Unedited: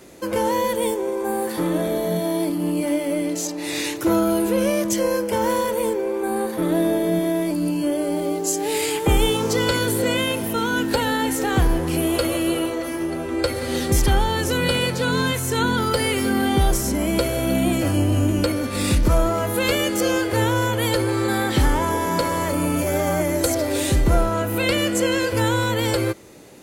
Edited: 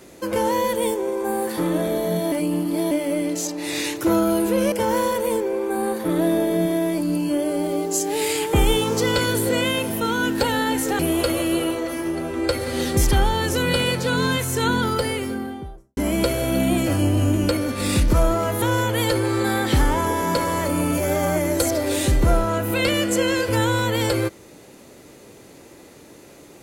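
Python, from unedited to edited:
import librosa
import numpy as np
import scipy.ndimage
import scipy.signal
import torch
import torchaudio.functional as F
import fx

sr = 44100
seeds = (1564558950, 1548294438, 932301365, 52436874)

y = fx.studio_fade_out(x, sr, start_s=15.66, length_s=1.26)
y = fx.edit(y, sr, fx.reverse_span(start_s=2.32, length_s=0.59),
    fx.cut(start_s=4.72, length_s=0.53),
    fx.cut(start_s=11.52, length_s=0.42),
    fx.cut(start_s=19.57, length_s=0.89), tone=tone)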